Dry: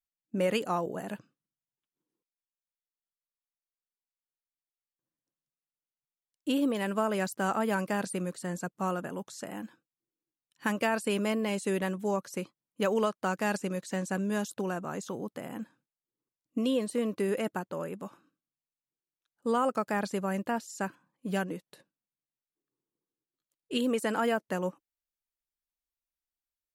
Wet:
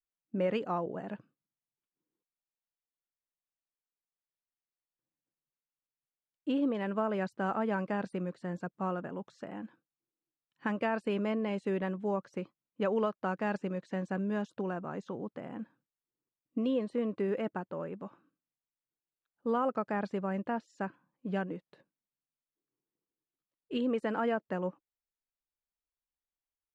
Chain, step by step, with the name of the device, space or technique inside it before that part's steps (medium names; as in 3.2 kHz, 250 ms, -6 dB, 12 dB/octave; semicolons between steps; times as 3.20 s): phone in a pocket (low-pass 3.6 kHz 12 dB/octave; treble shelf 2.5 kHz -9 dB); trim -2 dB